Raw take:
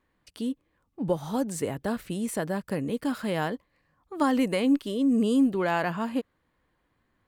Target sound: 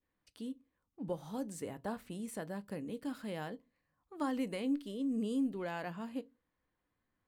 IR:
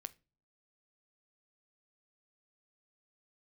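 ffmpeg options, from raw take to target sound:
-filter_complex "[0:a]asettb=1/sr,asplit=3[link_01][link_02][link_03];[link_01]atrim=end=1.744[link_04];[link_02]atrim=start=1.74:end=2.16,asetpts=PTS-STARTPTS,afade=type=in:duration=0.004:curve=qsin,afade=type=out:start_time=0.416:duration=0.004:curve=qsin,equalizer=frequency=900:width_type=o:width=1.1:gain=7.5[link_05];[link_03]atrim=start=2.156[link_06];[link_04][link_05]acrossfade=duration=0.004:curve1=hsin:curve2=qsin[link_07];[link_07][link_06]acrossfade=duration=0.004:curve1=qsin:curve2=hsin[link_08];[1:a]atrim=start_sample=2205,asetrate=83790,aresample=44100[link_09];[link_08][link_09]afir=irnorm=-1:irlink=0,adynamicequalizer=threshold=0.00251:dfrequency=1200:dqfactor=1.1:tfrequency=1200:tqfactor=1.1:attack=5:release=100:ratio=0.375:range=2:mode=cutabove:tftype=bell,volume=-2dB"

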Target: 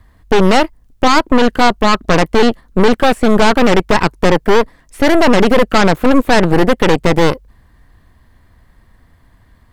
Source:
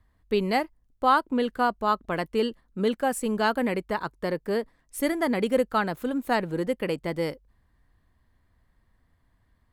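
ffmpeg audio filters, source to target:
ffmpeg -i in.wav -filter_complex "[0:a]apsyclip=23.5dB,acrossover=split=3400[link_01][link_02];[link_02]acompressor=threshold=-33dB:ratio=4:attack=1:release=60[link_03];[link_01][link_03]amix=inputs=2:normalize=0,aeval=exprs='1.12*(cos(1*acos(clip(val(0)/1.12,-1,1)))-cos(1*PI/2))+0.447*(cos(4*acos(clip(val(0)/1.12,-1,1)))-cos(4*PI/2))':channel_layout=same,volume=-6dB" out.wav

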